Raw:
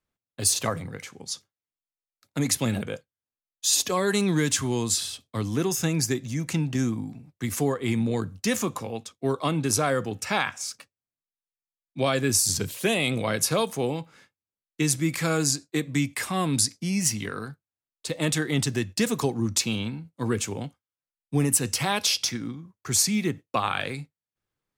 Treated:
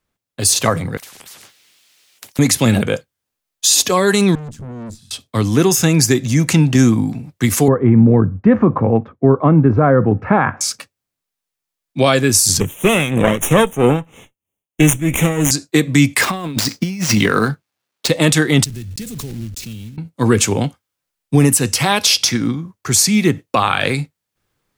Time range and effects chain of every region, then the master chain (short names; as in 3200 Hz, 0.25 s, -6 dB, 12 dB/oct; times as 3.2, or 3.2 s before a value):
0.97–2.39 weighting filter D + compressor 4:1, threshold -42 dBFS + spectral compressor 10:1
4.35–5.11 EQ curve 110 Hz 0 dB, 220 Hz +5 dB, 380 Hz -27 dB + tube stage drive 39 dB, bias 0.75
7.68–10.61 LPF 1600 Hz 24 dB/oct + low shelf 430 Hz +9 dB
12.6–15.51 minimum comb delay 0.31 ms + Butterworth band-stop 4600 Hz, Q 1.4 + tremolo 3.1 Hz, depth 73%
16.21–18.08 median filter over 5 samples + HPF 120 Hz + negative-ratio compressor -32 dBFS, ratio -0.5
18.64–19.98 block floating point 3-bit + passive tone stack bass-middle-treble 10-0-1 + backwards sustainer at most 24 dB/s
whole clip: vocal rider within 4 dB 0.5 s; maximiser +13.5 dB; gain -1 dB